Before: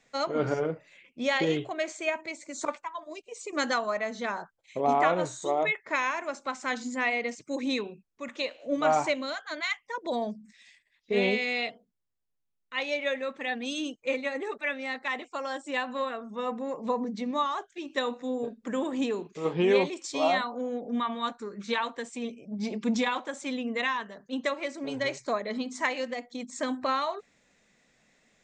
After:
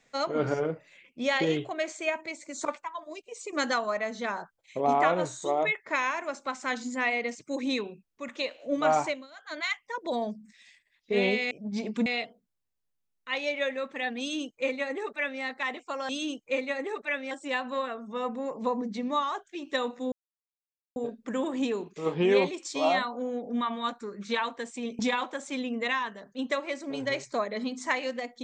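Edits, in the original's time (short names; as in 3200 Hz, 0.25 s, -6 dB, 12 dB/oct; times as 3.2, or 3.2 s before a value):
9–9.59 dip -20 dB, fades 0.28 s
13.65–14.87 copy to 15.54
18.35 insert silence 0.84 s
22.38–22.93 move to 11.51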